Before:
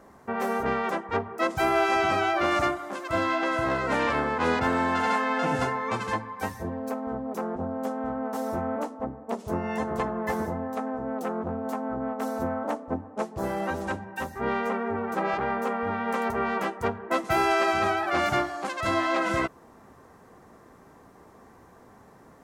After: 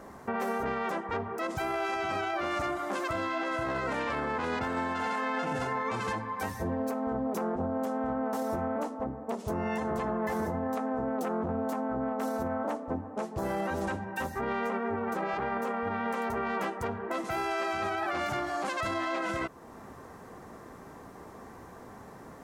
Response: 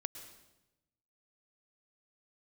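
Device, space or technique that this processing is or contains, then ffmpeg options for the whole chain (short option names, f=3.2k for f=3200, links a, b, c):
stacked limiters: -af "alimiter=limit=-18dB:level=0:latency=1:release=50,alimiter=limit=-24dB:level=0:latency=1:release=320,alimiter=level_in=5dB:limit=-24dB:level=0:latency=1:release=27,volume=-5dB,volume=5dB"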